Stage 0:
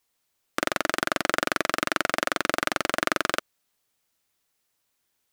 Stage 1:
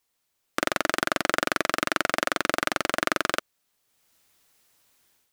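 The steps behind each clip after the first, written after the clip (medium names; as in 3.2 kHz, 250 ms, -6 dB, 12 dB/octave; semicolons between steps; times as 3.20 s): level rider gain up to 11.5 dB; trim -1 dB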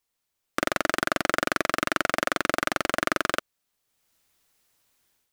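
bass shelf 76 Hz +5.5 dB; waveshaping leveller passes 1; trim -2.5 dB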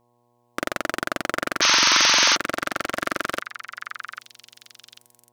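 mains buzz 120 Hz, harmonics 9, -64 dBFS -1 dB/octave; repeats whose band climbs or falls 795 ms, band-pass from 1.7 kHz, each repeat 1.4 oct, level -5.5 dB; painted sound noise, 1.61–2.36 s, 860–6500 Hz -16 dBFS; trim -1.5 dB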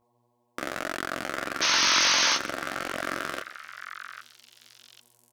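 delay 141 ms -20 dB; detune thickener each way 35 cents; trim -1.5 dB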